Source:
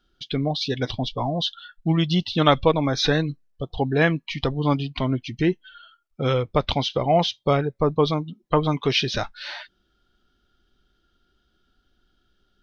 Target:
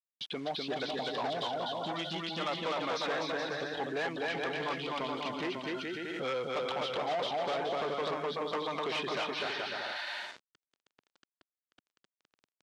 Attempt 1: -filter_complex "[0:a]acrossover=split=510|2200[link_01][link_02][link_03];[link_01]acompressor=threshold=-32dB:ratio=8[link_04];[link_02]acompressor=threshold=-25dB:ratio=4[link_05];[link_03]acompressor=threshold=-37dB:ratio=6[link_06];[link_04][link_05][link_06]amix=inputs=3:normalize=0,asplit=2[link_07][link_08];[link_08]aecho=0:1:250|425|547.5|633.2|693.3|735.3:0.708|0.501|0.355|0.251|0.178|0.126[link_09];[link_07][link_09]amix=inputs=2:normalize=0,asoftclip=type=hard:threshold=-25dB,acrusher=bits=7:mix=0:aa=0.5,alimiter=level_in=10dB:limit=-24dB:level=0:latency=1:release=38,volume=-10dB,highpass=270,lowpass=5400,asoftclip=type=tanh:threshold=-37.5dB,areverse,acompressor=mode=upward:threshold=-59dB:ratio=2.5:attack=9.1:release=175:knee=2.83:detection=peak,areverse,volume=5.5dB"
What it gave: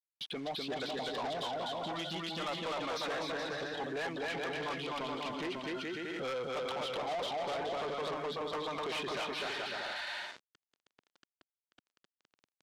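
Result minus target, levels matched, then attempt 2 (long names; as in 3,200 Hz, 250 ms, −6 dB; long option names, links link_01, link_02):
soft clipping: distortion +15 dB
-filter_complex "[0:a]acrossover=split=510|2200[link_01][link_02][link_03];[link_01]acompressor=threshold=-32dB:ratio=8[link_04];[link_02]acompressor=threshold=-25dB:ratio=4[link_05];[link_03]acompressor=threshold=-37dB:ratio=6[link_06];[link_04][link_05][link_06]amix=inputs=3:normalize=0,asplit=2[link_07][link_08];[link_08]aecho=0:1:250|425|547.5|633.2|693.3|735.3:0.708|0.501|0.355|0.251|0.178|0.126[link_09];[link_07][link_09]amix=inputs=2:normalize=0,asoftclip=type=hard:threshold=-25dB,acrusher=bits=7:mix=0:aa=0.5,alimiter=level_in=10dB:limit=-24dB:level=0:latency=1:release=38,volume=-10dB,highpass=270,lowpass=5400,asoftclip=type=tanh:threshold=-27dB,areverse,acompressor=mode=upward:threshold=-59dB:ratio=2.5:attack=9.1:release=175:knee=2.83:detection=peak,areverse,volume=5.5dB"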